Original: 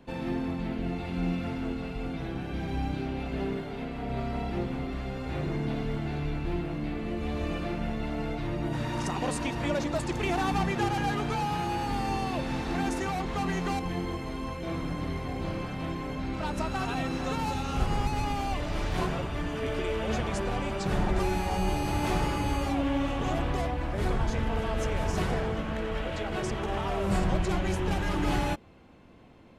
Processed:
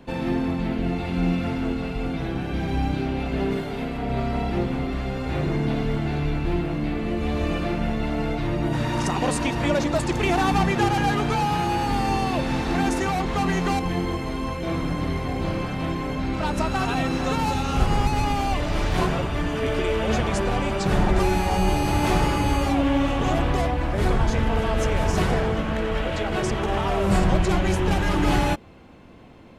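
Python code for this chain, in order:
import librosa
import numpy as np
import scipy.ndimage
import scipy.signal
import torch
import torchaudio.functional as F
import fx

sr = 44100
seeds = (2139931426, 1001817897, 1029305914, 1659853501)

y = fx.high_shelf(x, sr, hz=fx.line((3.5, 4600.0), (3.96, 9300.0)), db=7.0, at=(3.5, 3.96), fade=0.02)
y = y * librosa.db_to_amplitude(7.0)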